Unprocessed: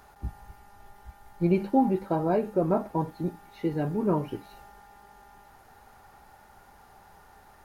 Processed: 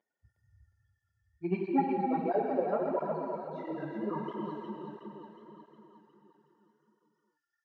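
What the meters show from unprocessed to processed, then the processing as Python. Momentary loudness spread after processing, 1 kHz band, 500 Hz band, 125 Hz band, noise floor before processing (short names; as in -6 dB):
17 LU, -2.0 dB, -4.0 dB, -11.5 dB, -55 dBFS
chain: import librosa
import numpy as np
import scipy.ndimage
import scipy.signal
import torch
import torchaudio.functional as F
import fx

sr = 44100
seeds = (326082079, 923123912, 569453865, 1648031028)

p1 = fx.bin_expand(x, sr, power=3.0)
p2 = fx.wow_flutter(p1, sr, seeds[0], rate_hz=2.1, depth_cents=20.0)
p3 = fx.fold_sine(p2, sr, drive_db=3, ceiling_db=-13.5)
p4 = p2 + (p3 * librosa.db_to_amplitude(-9.0))
p5 = fx.bandpass_edges(p4, sr, low_hz=250.0, high_hz=3100.0)
p6 = p5 + fx.echo_feedback(p5, sr, ms=363, feedback_pct=56, wet_db=-4.5, dry=0)
p7 = fx.rev_gated(p6, sr, seeds[1], gate_ms=330, shape='flat', drr_db=-0.5)
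p8 = fx.flanger_cancel(p7, sr, hz=1.5, depth_ms=7.9)
y = p8 * librosa.db_to_amplitude(-4.0)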